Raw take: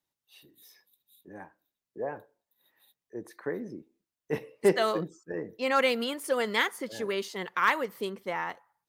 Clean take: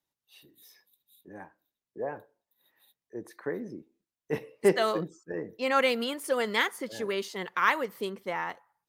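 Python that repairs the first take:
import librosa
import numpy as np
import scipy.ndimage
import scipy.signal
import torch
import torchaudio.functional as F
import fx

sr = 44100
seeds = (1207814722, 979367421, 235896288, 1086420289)

y = fx.fix_declip(x, sr, threshold_db=-13.5)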